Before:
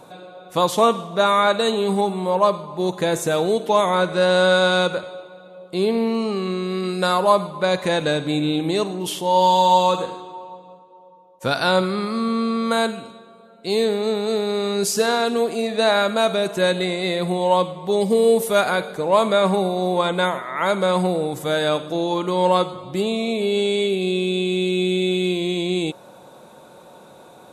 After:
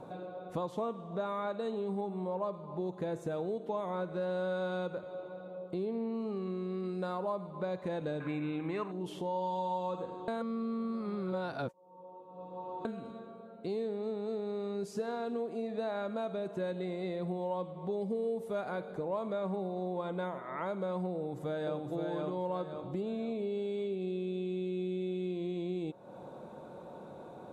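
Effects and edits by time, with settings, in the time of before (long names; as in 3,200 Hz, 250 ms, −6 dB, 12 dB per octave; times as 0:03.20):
0:08.20–0:08.92: flat-topped bell 1,600 Hz +14.5 dB
0:10.28–0:12.85: reverse
0:21.14–0:21.83: delay throw 520 ms, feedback 35%, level −1.5 dB
whole clip: tilt shelving filter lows +8 dB, about 1,400 Hz; downward compressor 3 to 1, threshold −30 dBFS; high-shelf EQ 9,400 Hz −9.5 dB; level −8 dB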